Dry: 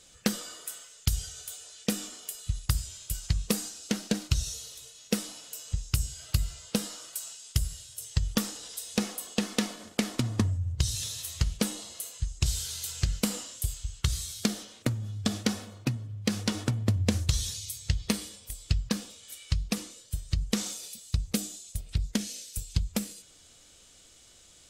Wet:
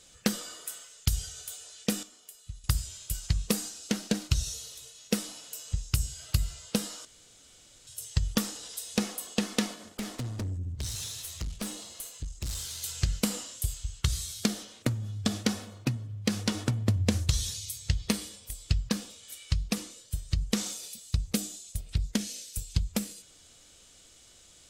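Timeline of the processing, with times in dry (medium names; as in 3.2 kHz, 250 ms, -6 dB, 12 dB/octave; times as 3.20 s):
2.03–2.64 s: gain -11 dB
7.05–7.87 s: room tone
9.74–12.83 s: valve stage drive 30 dB, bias 0.4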